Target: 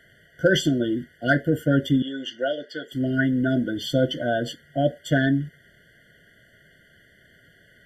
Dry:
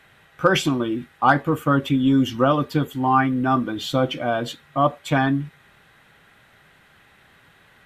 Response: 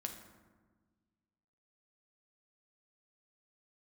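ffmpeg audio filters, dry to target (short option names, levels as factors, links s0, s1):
-filter_complex "[0:a]asettb=1/sr,asplit=3[s0][s1][s2];[s0]atrim=end=2.024[s3];[s1]atrim=start=2.02:end=2.92,asetpts=PTS-STARTPTS,afade=t=in:d=0.004:c=qsin,afade=t=out:st=0.896:d=0.004:c=qsin,highpass=670,lowpass=4700[s4];[s2]atrim=start=2.916[s5];[s3][s4]acrossfade=d=0.004:c1=hsin:c2=qsin[s6];[s6][s5]acrossfade=d=0.004:c1=qsin:c2=hsin,afftfilt=real='re*eq(mod(floor(b*sr/1024/710),2),0)':imag='im*eq(mod(floor(b*sr/1024/710),2),0)':win_size=1024:overlap=0.75"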